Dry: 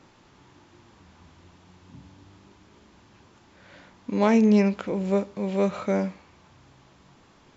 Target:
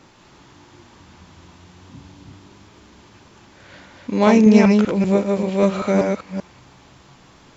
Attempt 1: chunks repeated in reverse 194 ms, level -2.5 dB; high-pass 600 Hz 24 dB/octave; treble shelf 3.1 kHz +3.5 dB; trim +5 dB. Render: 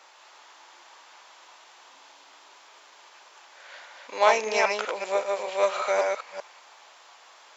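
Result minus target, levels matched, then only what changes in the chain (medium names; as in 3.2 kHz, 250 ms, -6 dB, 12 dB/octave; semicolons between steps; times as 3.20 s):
500 Hz band +2.5 dB
remove: high-pass 600 Hz 24 dB/octave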